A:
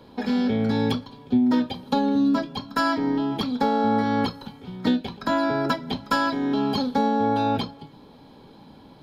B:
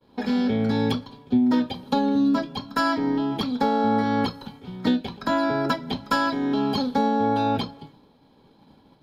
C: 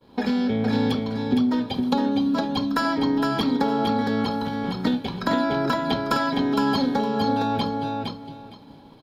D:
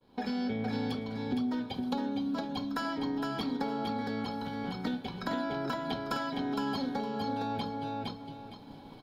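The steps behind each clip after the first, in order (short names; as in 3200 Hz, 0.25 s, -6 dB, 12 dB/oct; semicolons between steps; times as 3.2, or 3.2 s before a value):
expander -41 dBFS
compressor, threshold -25 dBFS, peak gain reduction 9 dB; on a send: feedback echo 0.462 s, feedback 19%, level -4 dB; on the sum: gain +5 dB
recorder AGC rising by 7.8 dB/s; resonator 750 Hz, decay 0.16 s, harmonics all, mix 70%; on a send at -20 dB: reverb RT60 0.45 s, pre-delay 0.102 s; on the sum: gain -1.5 dB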